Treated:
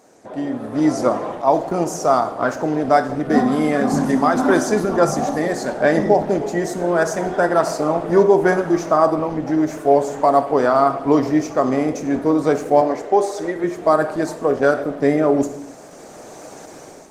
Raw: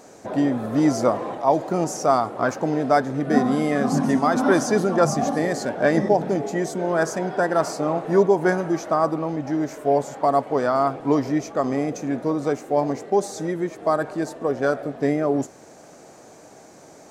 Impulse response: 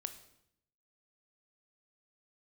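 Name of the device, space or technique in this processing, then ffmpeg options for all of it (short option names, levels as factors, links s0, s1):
far-field microphone of a smart speaker: -filter_complex "[0:a]asettb=1/sr,asplit=3[s0][s1][s2];[s0]atrim=end=12.814[s3];[s1]atrim=start=12.81:end=13.64,asetpts=PTS-STARTPTS,afade=t=in:d=0.004:c=qsin,afade=t=out:st=0.826:d=0.004:c=qsin,bass=f=250:g=-14,treble=f=4000:g=-7[s4];[s2]atrim=start=13.636[s5];[s3][s4]acrossfade=d=0.004:c1=hsin:c2=qsin[s6];[s6][s5]acrossfade=d=0.004:c1=qsin:c2=hsin[s7];[1:a]atrim=start_sample=2205[s8];[s7][s8]afir=irnorm=-1:irlink=0,highpass=f=160:p=1,dynaudnorm=f=300:g=5:m=6.31,volume=0.891" -ar 48000 -c:a libopus -b:a 20k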